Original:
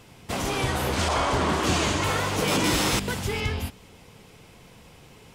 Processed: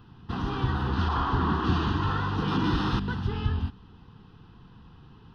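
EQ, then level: tape spacing loss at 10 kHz 32 dB; bell 440 Hz -2 dB 0.38 oct; fixed phaser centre 2200 Hz, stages 6; +3.0 dB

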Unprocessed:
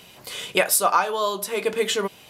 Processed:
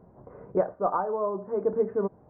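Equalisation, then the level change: Gaussian blur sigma 9.4 samples; low shelf 69 Hz +6.5 dB; 0.0 dB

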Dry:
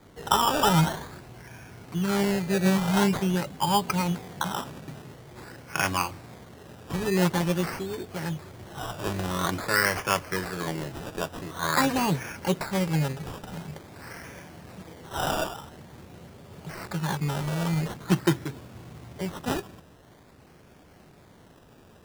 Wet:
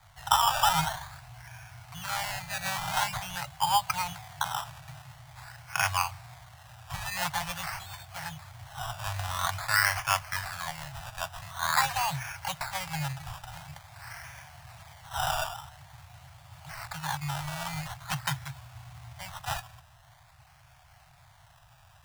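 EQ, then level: elliptic band-stop 130–720 Hz, stop band 40 dB; 0.0 dB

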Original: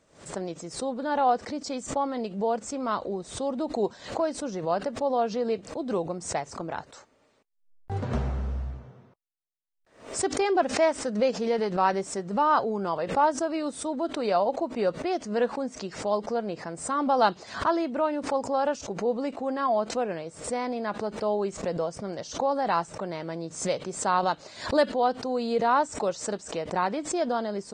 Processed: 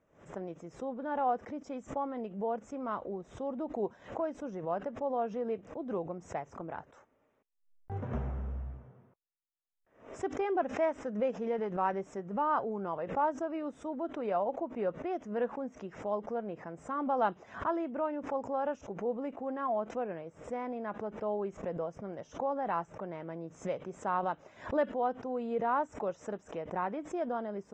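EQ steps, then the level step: running mean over 10 samples; -7.0 dB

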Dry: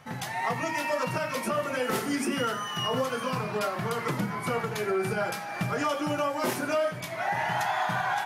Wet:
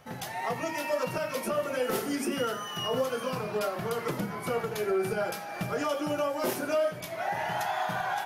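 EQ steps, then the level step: graphic EQ 125/250/1000/2000/4000/8000 Hz -9/-5/-7/-7/-4/-6 dB; +4.0 dB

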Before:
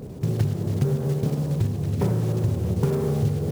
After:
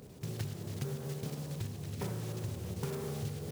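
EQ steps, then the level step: tilt shelf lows -9.5 dB, about 1400 Hz; high shelf 2700 Hz -7 dB; -6.5 dB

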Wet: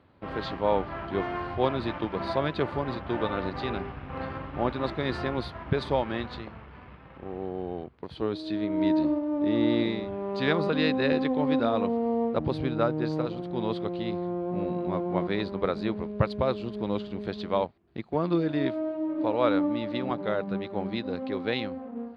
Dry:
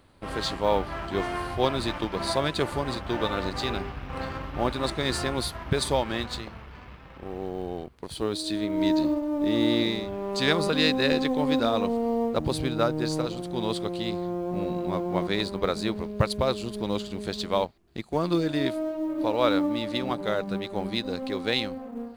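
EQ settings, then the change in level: HPF 75 Hz; air absorption 320 m; 0.0 dB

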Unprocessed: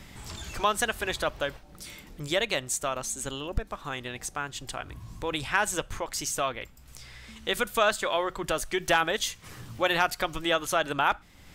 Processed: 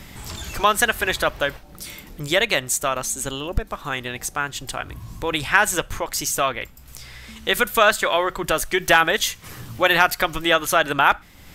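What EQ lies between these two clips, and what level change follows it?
dynamic EQ 1800 Hz, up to +4 dB, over -39 dBFS, Q 1.3; bell 13000 Hz +8 dB 0.38 oct; +6.5 dB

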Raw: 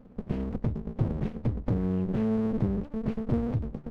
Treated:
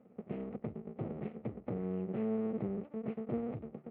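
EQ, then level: speaker cabinet 260–2400 Hz, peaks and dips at 280 Hz -7 dB, 540 Hz -3 dB, 980 Hz -10 dB, 1600 Hz -10 dB; -2.0 dB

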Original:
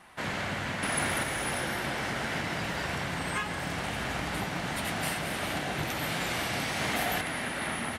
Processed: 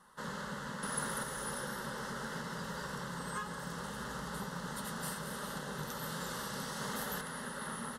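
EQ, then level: fixed phaser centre 470 Hz, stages 8; -4.5 dB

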